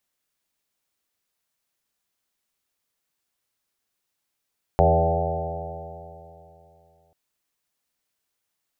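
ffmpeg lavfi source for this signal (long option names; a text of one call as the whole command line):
ffmpeg -f lavfi -i "aevalsrc='0.112*pow(10,-3*t/2.94)*sin(2*PI*80.75*t)+0.075*pow(10,-3*t/2.94)*sin(2*PI*161.82*t)+0.0119*pow(10,-3*t/2.94)*sin(2*PI*243.51*t)+0.0211*pow(10,-3*t/2.94)*sin(2*PI*326.14*t)+0.0631*pow(10,-3*t/2.94)*sin(2*PI*410*t)+0.0631*pow(10,-3*t/2.94)*sin(2*PI*495.4*t)+0.1*pow(10,-3*t/2.94)*sin(2*PI*582.61*t)+0.0891*pow(10,-3*t/2.94)*sin(2*PI*671.92*t)+0.1*pow(10,-3*t/2.94)*sin(2*PI*763.58*t)+0.0398*pow(10,-3*t/2.94)*sin(2*PI*857.85*t)':duration=2.34:sample_rate=44100" out.wav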